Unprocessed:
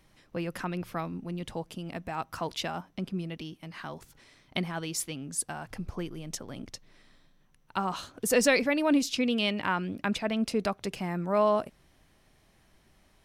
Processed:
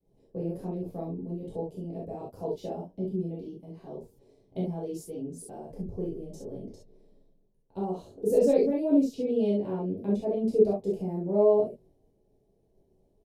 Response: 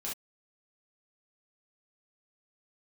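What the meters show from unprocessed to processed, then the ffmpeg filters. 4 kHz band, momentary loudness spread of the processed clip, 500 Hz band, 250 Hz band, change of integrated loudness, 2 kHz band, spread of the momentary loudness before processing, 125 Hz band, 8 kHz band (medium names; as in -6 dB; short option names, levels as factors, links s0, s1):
under -20 dB, 19 LU, +5.0 dB, +1.5 dB, +1.5 dB, under -25 dB, 16 LU, +1.0 dB, -15.5 dB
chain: -filter_complex "[0:a]agate=range=0.0224:threshold=0.00126:ratio=3:detection=peak,firequalizer=gain_entry='entry(250,0);entry(420,9);entry(1300,-27);entry(2600,-24);entry(4200,-18);entry(14000,-11)':delay=0.05:min_phase=1[s0];[1:a]atrim=start_sample=2205[s1];[s0][s1]afir=irnorm=-1:irlink=0,volume=0.841"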